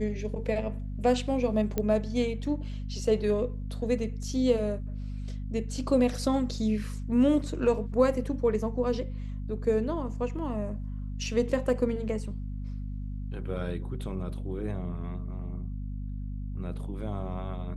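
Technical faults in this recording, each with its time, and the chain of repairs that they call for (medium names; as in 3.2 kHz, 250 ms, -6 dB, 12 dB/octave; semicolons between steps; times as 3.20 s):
hum 50 Hz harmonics 5 -35 dBFS
1.78 s: pop -15 dBFS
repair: de-click; de-hum 50 Hz, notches 5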